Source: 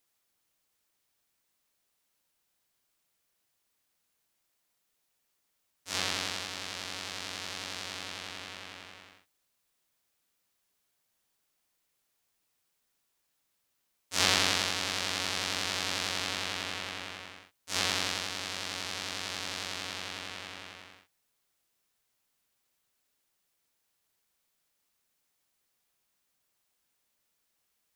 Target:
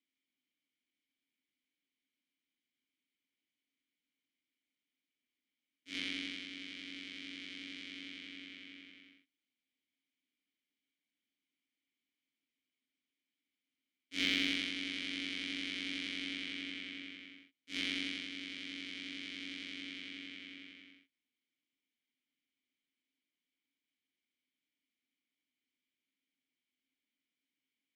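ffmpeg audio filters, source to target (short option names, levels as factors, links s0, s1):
-filter_complex "[0:a]asplit=3[s0][s1][s2];[s0]bandpass=f=270:t=q:w=8,volume=1[s3];[s1]bandpass=f=2290:t=q:w=8,volume=0.501[s4];[s2]bandpass=f=3010:t=q:w=8,volume=0.355[s5];[s3][s4][s5]amix=inputs=3:normalize=0,aeval=exprs='0.0596*(cos(1*acos(clip(val(0)/0.0596,-1,1)))-cos(1*PI/2))+0.000841*(cos(5*acos(clip(val(0)/0.0596,-1,1)))-cos(5*PI/2))+0.00075*(cos(6*acos(clip(val(0)/0.0596,-1,1)))-cos(6*PI/2))+0.00168*(cos(7*acos(clip(val(0)/0.0596,-1,1)))-cos(7*PI/2))':c=same,volume=2.11"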